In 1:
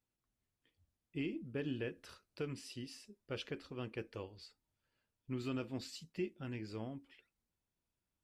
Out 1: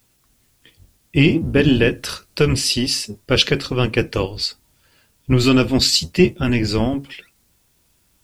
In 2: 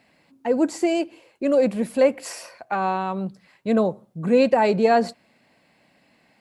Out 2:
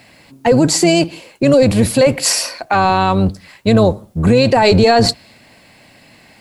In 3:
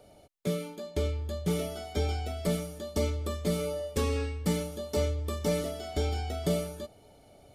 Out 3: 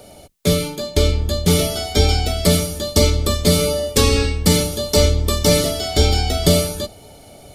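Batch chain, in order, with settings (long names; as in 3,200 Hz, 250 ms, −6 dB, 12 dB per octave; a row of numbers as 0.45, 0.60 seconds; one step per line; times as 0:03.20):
sub-octave generator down 1 octave, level −3 dB
high-shelf EQ 3,100 Hz +8 dB
brickwall limiter −15.5 dBFS
dynamic equaliser 4,300 Hz, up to +6 dB, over −53 dBFS, Q 1.9
normalise the peak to −1.5 dBFS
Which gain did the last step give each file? +24.0, +12.5, +12.5 decibels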